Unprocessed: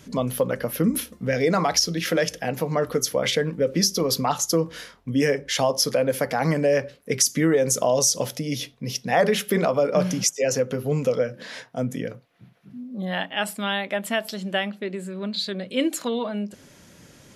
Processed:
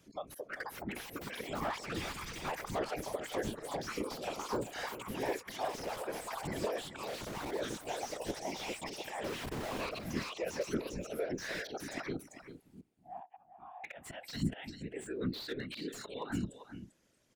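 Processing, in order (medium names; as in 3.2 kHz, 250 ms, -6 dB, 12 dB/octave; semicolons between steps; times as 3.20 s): 2.02–2.50 s: comb filter that takes the minimum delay 0.85 ms; spectral noise reduction 21 dB; peaking EQ 96 Hz -12.5 dB 0.67 oct; compression 16:1, threshold -31 dBFS, peak gain reduction 17 dB; slow attack 270 ms; gain riding within 4 dB 0.5 s; 9.24–9.86 s: Schmitt trigger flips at -51.5 dBFS; whisper effect; ever faster or slower copies 537 ms, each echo +6 st, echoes 2; 12.81–13.84 s: cascade formant filter a; delay 394 ms -12 dB; slew-rate limiter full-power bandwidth 25 Hz; trim +1 dB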